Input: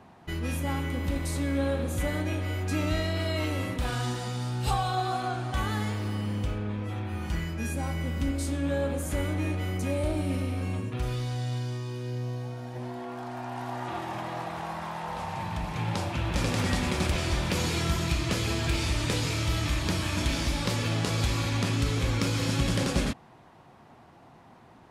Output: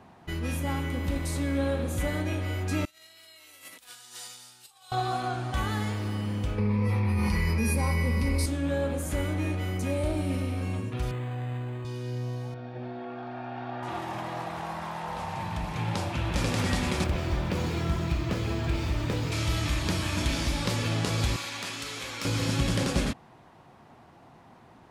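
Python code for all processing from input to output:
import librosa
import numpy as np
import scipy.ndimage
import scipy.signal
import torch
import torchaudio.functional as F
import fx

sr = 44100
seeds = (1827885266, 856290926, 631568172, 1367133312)

y = fx.chain(x, sr, fx.over_compress(threshold_db=-33.0, ratio=-0.5),
    fx.differentiator(), at=(2.85, 4.92))
y = fx.chain(y, sr, fx.ripple_eq(per_octave=0.88, db=13),
    fx.env_flatten(amount_pct=100), at=(6.58, 8.46))
y = fx.chain(y, sr, fx.highpass(hz=110.0, slope=12),
    fx.resample_linear(factor=8), at=(11.11, 11.85))
y = fx.chain(y, sr, fx.lowpass(hz=3900.0, slope=24),
    fx.notch_comb(f0_hz=1000.0), at=(12.54, 13.83))
y = fx.chain(y, sr, fx.high_shelf(hz=2100.0, db=-10.0),
    fx.resample_linear(factor=2), at=(17.04, 19.32))
y = fx.chain(y, sr, fx.highpass(hz=1200.0, slope=6),
    fx.overload_stage(gain_db=26.0), at=(21.36, 22.25))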